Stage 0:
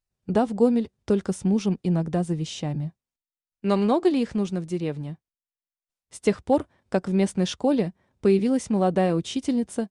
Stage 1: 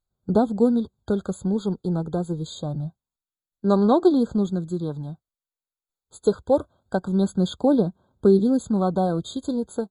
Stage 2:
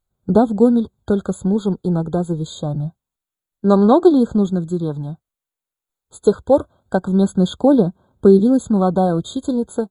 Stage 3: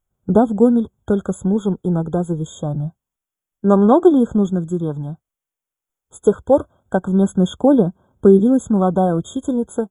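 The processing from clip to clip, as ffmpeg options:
-af "aphaser=in_gain=1:out_gain=1:delay=2.3:decay=0.33:speed=0.25:type=sinusoidal,afftfilt=real='re*eq(mod(floor(b*sr/1024/1600),2),0)':imag='im*eq(mod(floor(b*sr/1024/1600),2),0)':win_size=1024:overlap=0.75"
-af "equalizer=f=4900:t=o:w=0.52:g=-7,volume=2"
-af "asuperstop=centerf=4300:order=8:qfactor=2.5"

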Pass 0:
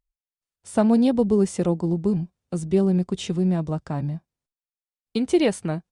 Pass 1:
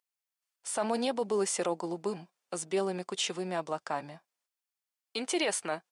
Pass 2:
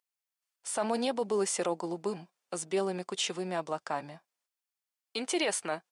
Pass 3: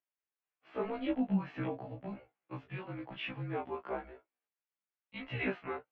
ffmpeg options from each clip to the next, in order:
-af "highpass=740,bandreject=f=3800:w=23,alimiter=level_in=1.06:limit=0.0631:level=0:latency=1:release=16,volume=0.944,volume=1.58"
-af anull
-af "highpass=f=370:t=q:w=0.5412,highpass=f=370:t=q:w=1.307,lowpass=f=3000:t=q:w=0.5176,lowpass=f=3000:t=q:w=0.7071,lowpass=f=3000:t=q:w=1.932,afreqshift=-230,flanger=delay=18.5:depth=3.8:speed=0.95,afftfilt=real='re*1.73*eq(mod(b,3),0)':imag='im*1.73*eq(mod(b,3),0)':win_size=2048:overlap=0.75,volume=1.26"

